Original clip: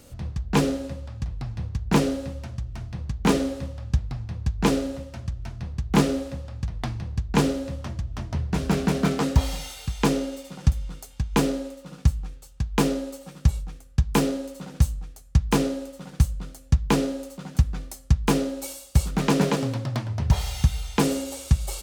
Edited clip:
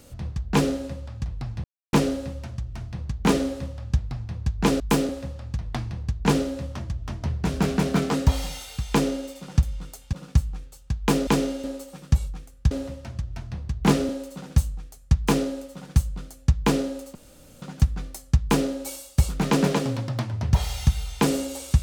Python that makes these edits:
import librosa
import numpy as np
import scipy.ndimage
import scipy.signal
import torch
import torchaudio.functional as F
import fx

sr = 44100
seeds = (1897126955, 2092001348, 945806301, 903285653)

y = fx.edit(x, sr, fx.silence(start_s=1.64, length_s=0.29),
    fx.swap(start_s=4.8, length_s=1.38, other_s=14.04, other_length_s=0.29),
    fx.duplicate(start_s=10.0, length_s=0.37, to_s=12.97),
    fx.cut(start_s=11.22, length_s=0.61),
    fx.insert_room_tone(at_s=17.39, length_s=0.47), tone=tone)